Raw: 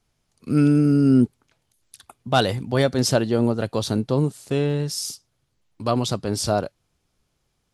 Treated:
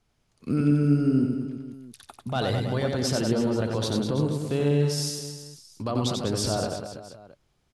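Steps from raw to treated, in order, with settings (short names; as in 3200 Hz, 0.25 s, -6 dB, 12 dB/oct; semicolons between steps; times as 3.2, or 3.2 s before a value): high shelf 6500 Hz -7.5 dB; limiter -17 dBFS, peak gain reduction 11.5 dB; reverse bouncing-ball echo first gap 90 ms, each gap 1.2×, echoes 5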